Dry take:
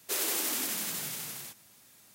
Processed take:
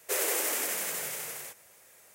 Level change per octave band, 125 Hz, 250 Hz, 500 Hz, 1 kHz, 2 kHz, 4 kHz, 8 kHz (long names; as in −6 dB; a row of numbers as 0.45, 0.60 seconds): −6.5, −3.0, +7.0, +3.5, +4.0, −2.0, +1.5 decibels